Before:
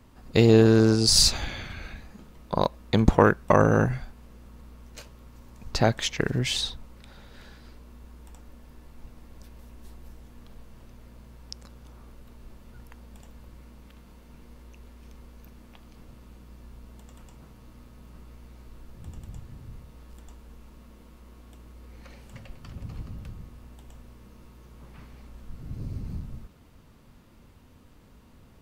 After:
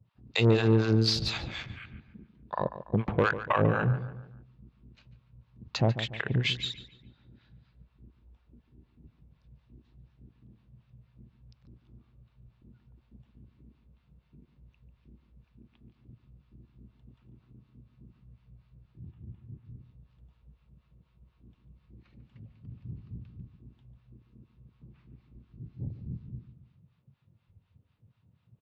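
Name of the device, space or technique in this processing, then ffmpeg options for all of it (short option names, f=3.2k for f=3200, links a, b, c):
guitar amplifier with harmonic tremolo: -filter_complex "[0:a]asettb=1/sr,asplit=3[a][b][c];[a]atrim=end=19.114[d];[b]atrim=start=19.11:end=19.65,asetpts=PTS-STARTPTS,afade=t=in:d=0.004:c=qsin,afade=t=out:st=0.536:d=0.004:c=qsin,lowpass=2.8k[e];[c]atrim=start=19.646[f];[d][e]acrossfade=d=0.004:c1=hsin:c2=qsin[g];[g][f]acrossfade=d=0.004:c1=qsin:c2=hsin,acrossover=split=700[h][i];[h]aeval=exprs='val(0)*(1-1/2+1/2*cos(2*PI*4.1*n/s))':c=same[j];[i]aeval=exprs='val(0)*(1-1/2-1/2*cos(2*PI*4.1*n/s))':c=same[k];[j][k]amix=inputs=2:normalize=0,asoftclip=type=tanh:threshold=-16.5dB,highpass=84,equalizer=f=120:t=q:w=4:g=5,equalizer=f=260:t=q:w=4:g=-3,equalizer=f=2.6k:t=q:w=4:g=4,equalizer=f=3.7k:t=q:w=4:g=4,lowpass=f=4.4k:w=0.5412,lowpass=f=4.4k:w=1.3066,afwtdn=0.00562,asplit=2[l][m];[m]adelay=144,lowpass=f=2.8k:p=1,volume=-12dB,asplit=2[n][o];[o]adelay=144,lowpass=f=2.8k:p=1,volume=0.44,asplit=2[p][q];[q]adelay=144,lowpass=f=2.8k:p=1,volume=0.44,asplit=2[r][s];[s]adelay=144,lowpass=f=2.8k:p=1,volume=0.44[t];[l][n][p][r][t]amix=inputs=5:normalize=0,volume=1dB"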